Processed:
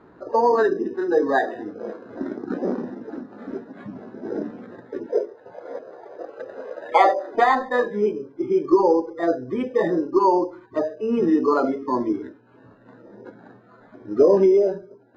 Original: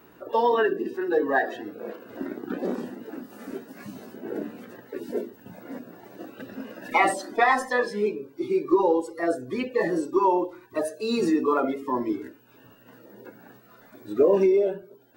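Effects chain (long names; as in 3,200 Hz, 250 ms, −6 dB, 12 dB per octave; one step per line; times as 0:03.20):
0:05.06–0:07.35: low shelf with overshoot 330 Hz −13 dB, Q 3
bad sample-rate conversion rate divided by 8×, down filtered, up hold
low-pass filter 1,700 Hz 12 dB per octave
level +4 dB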